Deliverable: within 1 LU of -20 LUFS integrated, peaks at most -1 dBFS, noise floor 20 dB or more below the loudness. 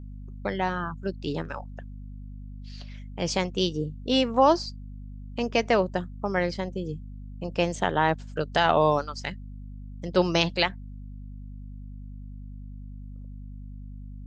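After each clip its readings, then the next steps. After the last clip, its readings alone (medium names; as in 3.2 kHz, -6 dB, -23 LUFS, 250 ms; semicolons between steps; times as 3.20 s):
hum 50 Hz; highest harmonic 250 Hz; hum level -37 dBFS; loudness -26.5 LUFS; peak level -5.0 dBFS; loudness target -20.0 LUFS
-> de-hum 50 Hz, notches 5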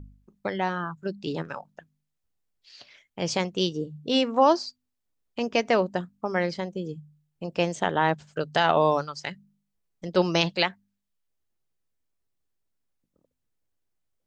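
hum not found; loudness -26.5 LUFS; peak level -5.0 dBFS; loudness target -20.0 LUFS
-> trim +6.5 dB; peak limiter -1 dBFS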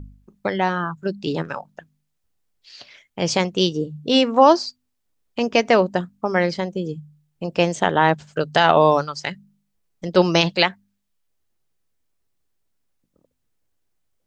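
loudness -20.0 LUFS; peak level -1.0 dBFS; noise floor -74 dBFS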